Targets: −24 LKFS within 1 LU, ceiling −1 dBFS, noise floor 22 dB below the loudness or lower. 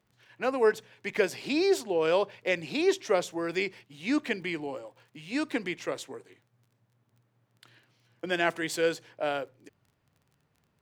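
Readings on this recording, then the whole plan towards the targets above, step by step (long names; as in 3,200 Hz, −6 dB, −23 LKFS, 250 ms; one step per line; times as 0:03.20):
crackle rate 21 per second; integrated loudness −29.5 LKFS; sample peak −11.5 dBFS; target loudness −24.0 LKFS
→ click removal
level +5.5 dB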